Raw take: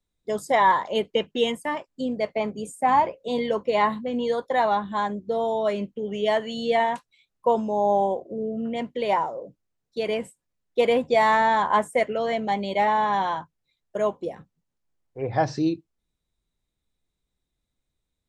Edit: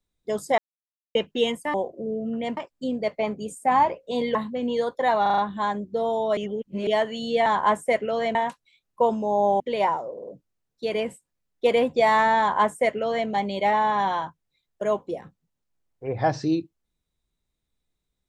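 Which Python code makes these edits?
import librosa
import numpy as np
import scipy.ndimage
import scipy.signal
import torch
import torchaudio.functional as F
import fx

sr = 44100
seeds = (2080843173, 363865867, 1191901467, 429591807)

y = fx.edit(x, sr, fx.silence(start_s=0.58, length_s=0.57),
    fx.cut(start_s=3.52, length_s=0.34),
    fx.stutter(start_s=4.73, slice_s=0.04, count=5),
    fx.reverse_span(start_s=5.72, length_s=0.5),
    fx.move(start_s=8.06, length_s=0.83, to_s=1.74),
    fx.stutter(start_s=9.41, slice_s=0.05, count=4),
    fx.duplicate(start_s=11.53, length_s=0.89, to_s=6.81), tone=tone)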